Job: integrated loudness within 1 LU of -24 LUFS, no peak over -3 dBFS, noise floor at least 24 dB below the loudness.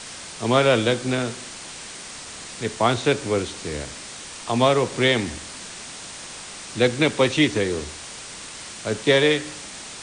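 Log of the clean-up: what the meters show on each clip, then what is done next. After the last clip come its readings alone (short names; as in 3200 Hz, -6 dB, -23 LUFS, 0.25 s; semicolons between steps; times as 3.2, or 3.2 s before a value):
noise floor -38 dBFS; noise floor target -46 dBFS; loudness -21.5 LUFS; peak -6.0 dBFS; loudness target -24.0 LUFS
-> noise print and reduce 8 dB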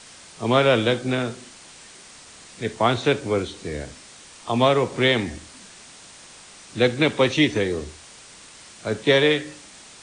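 noise floor -46 dBFS; loudness -21.5 LUFS; peak -6.0 dBFS; loudness target -24.0 LUFS
-> gain -2.5 dB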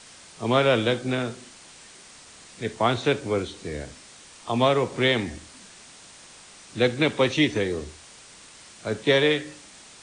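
loudness -24.0 LUFS; peak -8.5 dBFS; noise floor -48 dBFS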